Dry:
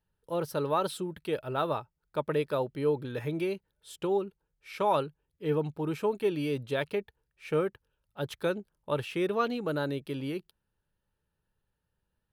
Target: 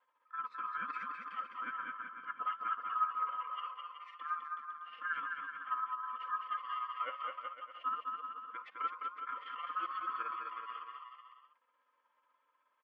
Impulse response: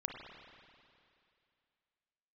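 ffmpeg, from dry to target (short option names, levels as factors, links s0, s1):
-af "afftfilt=real='real(if(lt(b,960),b+48*(1-2*mod(floor(b/48),2)),b),0)':imag='imag(if(lt(b,960),b+48*(1-2*mod(floor(b/48),2)),b),0)':win_size=2048:overlap=0.75,aderivative,aecho=1:1:3.3:0.68,acompressor=mode=upward:threshold=0.002:ratio=2.5,flanger=delay=8.1:depth=4.3:regen=79:speed=0.68:shape=sinusoidal,tremolo=f=17:d=0.61,asetrate=39289,aresample=44100,atempo=1.12246,highpass=160,equalizer=f=220:t=q:w=4:g=-6,equalizer=f=530:t=q:w=4:g=3,equalizer=f=980:t=q:w=4:g=-7,equalizer=f=1600:t=q:w=4:g=-5,lowpass=f=2100:w=0.5412,lowpass=f=2100:w=1.3066,aecho=1:1:200|360|488|590.4|672.3:0.631|0.398|0.251|0.158|0.1,asetrate=42336,aresample=44100,volume=3.76"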